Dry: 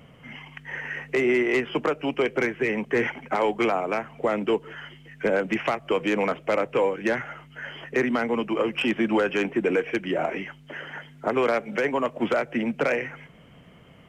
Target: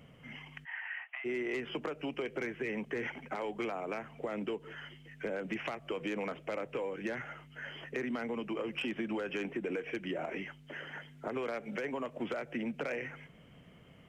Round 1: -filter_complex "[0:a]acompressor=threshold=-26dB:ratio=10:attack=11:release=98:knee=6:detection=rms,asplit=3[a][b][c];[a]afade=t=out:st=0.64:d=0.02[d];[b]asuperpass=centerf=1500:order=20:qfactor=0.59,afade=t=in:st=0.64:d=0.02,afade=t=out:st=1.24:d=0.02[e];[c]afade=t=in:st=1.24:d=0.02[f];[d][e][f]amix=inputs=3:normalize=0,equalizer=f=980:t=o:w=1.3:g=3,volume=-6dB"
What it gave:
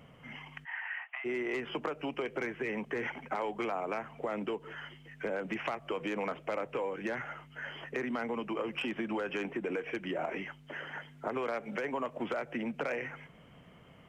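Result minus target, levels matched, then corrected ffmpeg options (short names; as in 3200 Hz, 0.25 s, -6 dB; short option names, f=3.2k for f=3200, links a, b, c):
1000 Hz band +3.0 dB
-filter_complex "[0:a]acompressor=threshold=-26dB:ratio=10:attack=11:release=98:knee=6:detection=rms,asplit=3[a][b][c];[a]afade=t=out:st=0.64:d=0.02[d];[b]asuperpass=centerf=1500:order=20:qfactor=0.59,afade=t=in:st=0.64:d=0.02,afade=t=out:st=1.24:d=0.02[e];[c]afade=t=in:st=1.24:d=0.02[f];[d][e][f]amix=inputs=3:normalize=0,equalizer=f=980:t=o:w=1.3:g=-3,volume=-6dB"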